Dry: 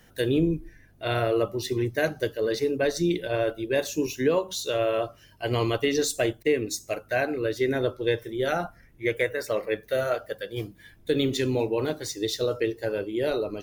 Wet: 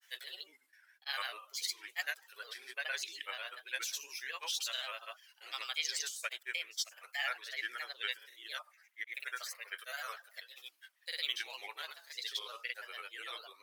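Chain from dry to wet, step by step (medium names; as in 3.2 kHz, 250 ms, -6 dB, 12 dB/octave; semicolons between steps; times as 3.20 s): Bessel high-pass 1.7 kHz, order 4; gate with hold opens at -54 dBFS; granulator, pitch spread up and down by 3 st; trim -1.5 dB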